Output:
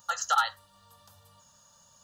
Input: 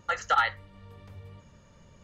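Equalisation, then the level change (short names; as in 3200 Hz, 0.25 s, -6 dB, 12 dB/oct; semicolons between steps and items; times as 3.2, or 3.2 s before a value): tilt +4.5 dB/oct; fixed phaser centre 910 Hz, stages 4; 0.0 dB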